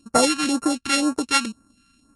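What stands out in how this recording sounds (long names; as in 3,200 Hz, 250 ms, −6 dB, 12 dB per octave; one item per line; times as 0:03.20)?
a buzz of ramps at a fixed pitch in blocks of 32 samples
phaser sweep stages 2, 2 Hz, lowest notch 520–3,100 Hz
MP3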